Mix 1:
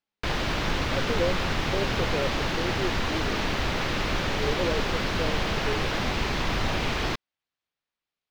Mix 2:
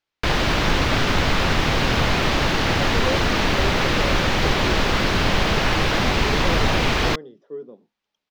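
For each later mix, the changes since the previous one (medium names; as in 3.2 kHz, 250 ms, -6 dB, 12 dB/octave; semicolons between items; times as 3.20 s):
speech: entry +1.85 s; background +7.5 dB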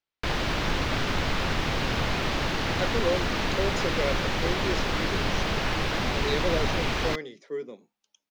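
speech: remove boxcar filter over 20 samples; background -7.5 dB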